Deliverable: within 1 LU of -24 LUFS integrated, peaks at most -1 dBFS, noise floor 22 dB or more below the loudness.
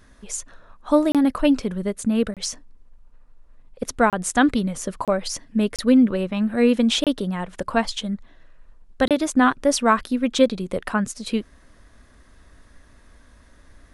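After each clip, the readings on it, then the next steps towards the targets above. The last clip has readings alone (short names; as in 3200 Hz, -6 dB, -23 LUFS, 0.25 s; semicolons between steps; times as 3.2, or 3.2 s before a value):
dropouts 7; longest dropout 27 ms; loudness -21.5 LUFS; peak -4.0 dBFS; loudness target -24.0 LUFS
-> interpolate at 1.12/2.34/4.1/5.05/5.76/7.04/9.08, 27 ms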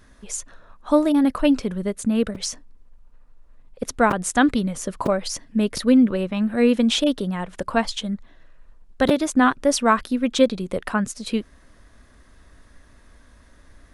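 dropouts 0; loudness -21.5 LUFS; peak -4.0 dBFS; loudness target -24.0 LUFS
-> gain -2.5 dB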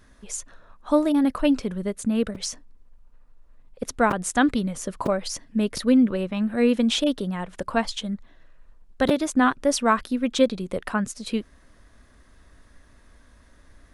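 loudness -24.0 LUFS; peak -6.5 dBFS; noise floor -55 dBFS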